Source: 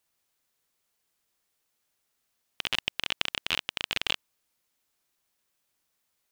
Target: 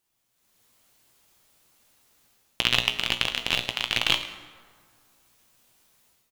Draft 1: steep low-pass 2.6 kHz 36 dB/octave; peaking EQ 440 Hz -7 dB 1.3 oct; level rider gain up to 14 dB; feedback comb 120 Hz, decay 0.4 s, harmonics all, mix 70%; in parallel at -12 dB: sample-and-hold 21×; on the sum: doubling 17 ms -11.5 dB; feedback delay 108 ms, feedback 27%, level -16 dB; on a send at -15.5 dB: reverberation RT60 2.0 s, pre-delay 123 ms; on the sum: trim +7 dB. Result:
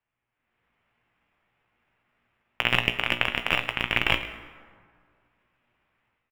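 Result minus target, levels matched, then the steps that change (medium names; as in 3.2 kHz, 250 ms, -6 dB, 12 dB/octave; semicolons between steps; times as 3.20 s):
2 kHz band +3.5 dB
remove: steep low-pass 2.6 kHz 36 dB/octave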